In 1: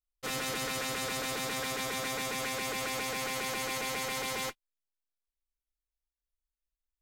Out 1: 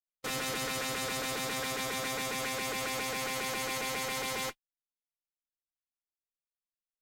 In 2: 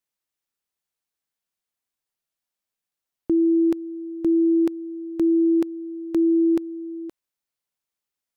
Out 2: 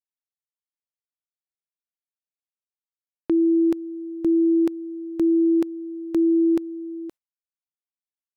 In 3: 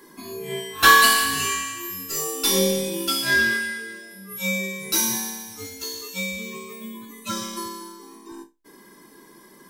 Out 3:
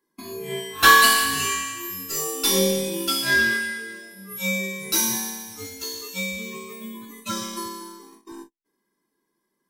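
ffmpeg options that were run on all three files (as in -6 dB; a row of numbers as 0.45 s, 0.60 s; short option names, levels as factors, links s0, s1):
-af "agate=range=0.0447:threshold=0.00708:ratio=16:detection=peak"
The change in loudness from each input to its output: 0.0 LU, 0.0 LU, 0.0 LU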